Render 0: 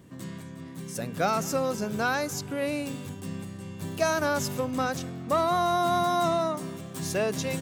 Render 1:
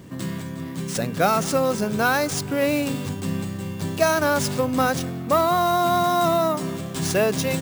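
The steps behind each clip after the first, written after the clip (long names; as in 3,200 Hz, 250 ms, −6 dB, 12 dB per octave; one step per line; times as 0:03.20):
in parallel at +1 dB: speech leveller within 5 dB 0.5 s
on the sum: sample-rate reduction 16,000 Hz, jitter 0%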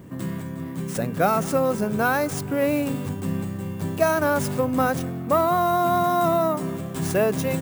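parametric band 4,600 Hz −9.5 dB 1.8 octaves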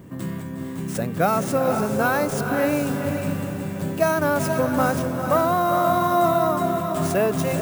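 feedback delay with all-pass diffusion 459 ms, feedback 44%, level −5.5 dB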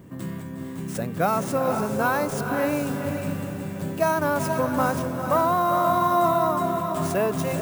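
dynamic equaliser 1,000 Hz, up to +7 dB, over −40 dBFS, Q 5.6
level −3 dB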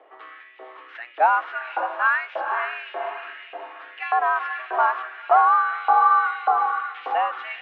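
auto-filter high-pass saw up 1.7 Hz 540–2,500 Hz
single-sideband voice off tune +120 Hz 170–3,100 Hz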